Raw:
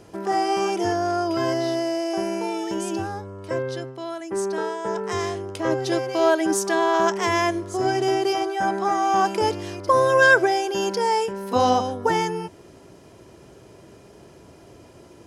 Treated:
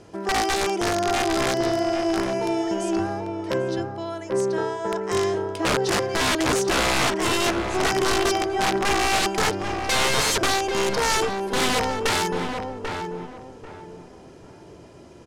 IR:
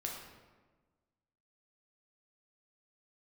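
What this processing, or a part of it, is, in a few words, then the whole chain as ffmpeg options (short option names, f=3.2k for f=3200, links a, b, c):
overflowing digital effects unit: -filter_complex "[0:a]asettb=1/sr,asplit=3[a][b][c];[a]atrim=end=5.584[d];[b]atrim=start=5.58:end=6.01,asetpts=PTS-STARTPTS,afade=t=in:d=0.004:c=qsin,afade=t=out:st=0.426:d=0.004:c=qsin,asplit=2[e][f];[f]adelay=13,volume=-5dB[g];[e][g]amix=inputs=2:normalize=0,atrim=end_sample=18963[h];[c]atrim=start=6.006[i];[d][h]acrossfade=d=0.004:c1=hsin:c2=qsin[j];[j][i]acrossfade=d=0.004:c1=qsin:c2=hsin,aeval=exprs='(mod(6.31*val(0)+1,2)-1)/6.31':c=same,lowpass=8.9k,asplit=2[k][l];[l]adelay=791,lowpass=f=1.4k:p=1,volume=-4dB,asplit=2[m][n];[n]adelay=791,lowpass=f=1.4k:p=1,volume=0.3,asplit=2[o][p];[p]adelay=791,lowpass=f=1.4k:p=1,volume=0.3,asplit=2[q][r];[r]adelay=791,lowpass=f=1.4k:p=1,volume=0.3[s];[k][m][o][q][s]amix=inputs=5:normalize=0"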